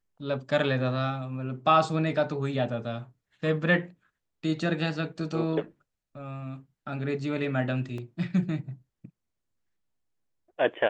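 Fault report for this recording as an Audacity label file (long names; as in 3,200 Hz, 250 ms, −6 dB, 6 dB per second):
7.980000	7.980000	drop-out 2.9 ms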